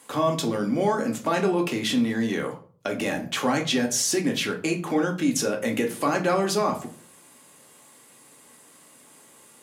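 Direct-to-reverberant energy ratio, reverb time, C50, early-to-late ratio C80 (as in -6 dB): 1.5 dB, 0.45 s, 12.0 dB, 17.0 dB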